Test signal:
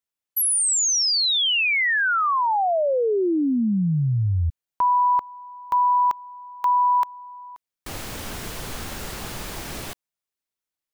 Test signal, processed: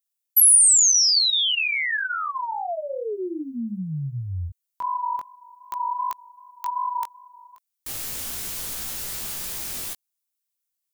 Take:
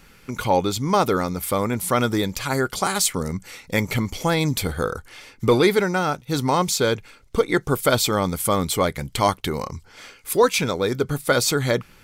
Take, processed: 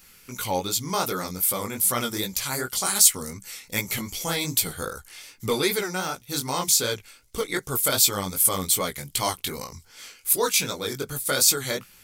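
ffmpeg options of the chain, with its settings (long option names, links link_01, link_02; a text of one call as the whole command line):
ffmpeg -i in.wav -af "crystalizer=i=5:c=0,flanger=delay=15.5:depth=6.5:speed=2.6,volume=-6.5dB" out.wav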